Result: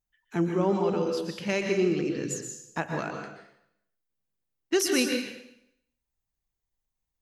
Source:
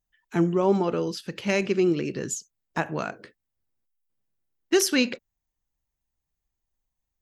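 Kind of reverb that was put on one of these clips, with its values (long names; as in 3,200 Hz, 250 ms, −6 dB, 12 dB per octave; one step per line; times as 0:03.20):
dense smooth reverb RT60 0.73 s, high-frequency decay 1×, pre-delay 110 ms, DRR 3 dB
level −4 dB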